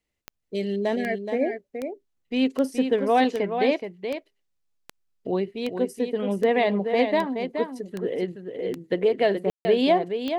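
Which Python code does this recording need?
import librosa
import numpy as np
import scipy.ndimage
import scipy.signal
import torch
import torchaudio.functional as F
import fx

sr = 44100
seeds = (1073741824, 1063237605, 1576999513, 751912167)

y = fx.fix_declick_ar(x, sr, threshold=10.0)
y = fx.fix_ambience(y, sr, seeds[0], print_start_s=0.0, print_end_s=0.5, start_s=9.5, end_s=9.65)
y = fx.fix_echo_inverse(y, sr, delay_ms=424, level_db=-7.5)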